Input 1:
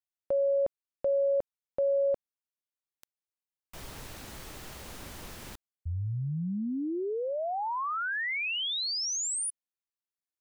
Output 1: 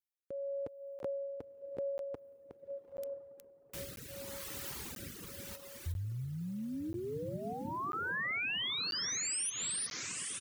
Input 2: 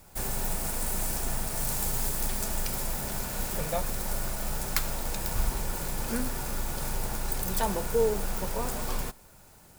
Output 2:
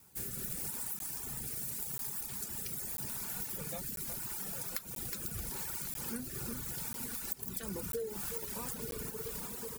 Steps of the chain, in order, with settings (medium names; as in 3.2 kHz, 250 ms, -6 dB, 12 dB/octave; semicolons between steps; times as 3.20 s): treble shelf 9.8 kHz +11 dB; delay 365 ms -8 dB; rotary cabinet horn 0.8 Hz; level rider gain up to 8 dB; high-pass 80 Hz 12 dB/octave; peaking EQ 630 Hz -11 dB 0.52 oct; on a send: echo that smears into a reverb 955 ms, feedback 53%, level -9 dB; on the sum: compression 12:1, threshold -28 dBFS; reverb removal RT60 1.4 s; crackling interface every 0.99 s, samples 512, zero, from 0.99 s; trim -5 dB